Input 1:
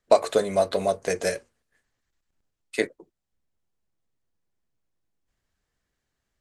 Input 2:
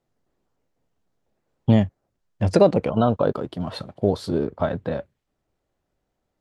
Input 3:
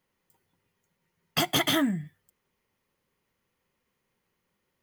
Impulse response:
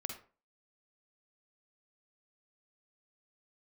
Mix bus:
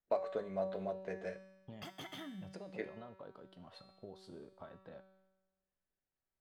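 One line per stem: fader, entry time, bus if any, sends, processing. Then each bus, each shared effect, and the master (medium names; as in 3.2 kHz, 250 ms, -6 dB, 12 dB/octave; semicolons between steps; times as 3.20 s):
-4.0 dB, 0.00 s, no bus, no send, low-pass 2.2 kHz 12 dB/octave
-10.0 dB, 0.00 s, bus A, no send, tilt EQ +2 dB/octave; peak limiter -11.5 dBFS, peak gain reduction 6.5 dB
-1.0 dB, 0.45 s, bus A, no send, none
bus A: 0.0 dB, treble shelf 6 kHz -11.5 dB; compression 2.5:1, threshold -36 dBFS, peak gain reduction 9 dB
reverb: none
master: feedback comb 190 Hz, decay 1.1 s, mix 80%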